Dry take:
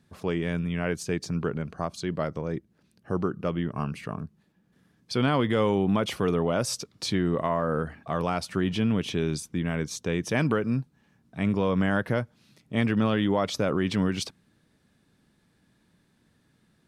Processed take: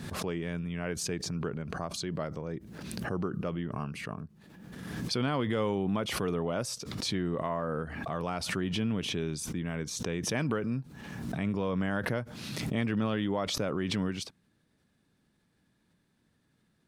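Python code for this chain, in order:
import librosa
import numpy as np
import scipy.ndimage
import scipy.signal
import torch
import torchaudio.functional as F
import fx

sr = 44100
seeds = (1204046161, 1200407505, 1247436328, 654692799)

y = fx.pre_swell(x, sr, db_per_s=36.0)
y = F.gain(torch.from_numpy(y), -6.5).numpy()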